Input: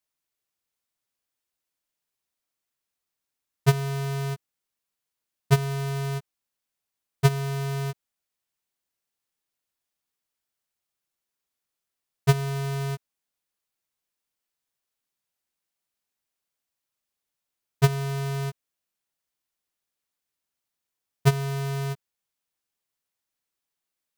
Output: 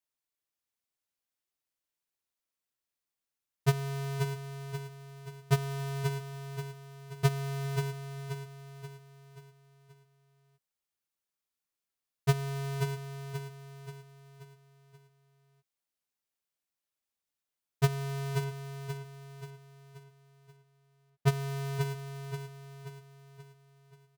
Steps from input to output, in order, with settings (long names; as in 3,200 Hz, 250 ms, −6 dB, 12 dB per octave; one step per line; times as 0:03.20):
0:18.44–0:21.28: high-shelf EQ 4,900 Hz −10 dB
repeating echo 531 ms, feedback 46%, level −6.5 dB
level −6.5 dB